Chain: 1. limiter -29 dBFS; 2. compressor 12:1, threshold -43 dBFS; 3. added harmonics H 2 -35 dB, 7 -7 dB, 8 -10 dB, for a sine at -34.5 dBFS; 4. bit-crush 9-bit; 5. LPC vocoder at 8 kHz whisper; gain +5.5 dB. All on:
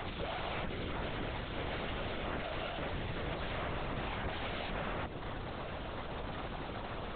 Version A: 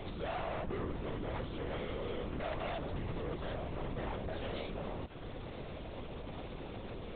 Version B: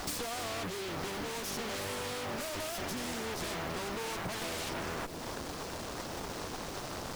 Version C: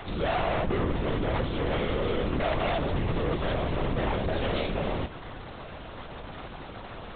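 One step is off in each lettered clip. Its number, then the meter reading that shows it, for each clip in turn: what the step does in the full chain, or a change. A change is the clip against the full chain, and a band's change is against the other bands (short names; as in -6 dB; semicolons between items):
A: 3, 2 kHz band -6.0 dB; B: 5, 125 Hz band -5.0 dB; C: 2, mean gain reduction 8.5 dB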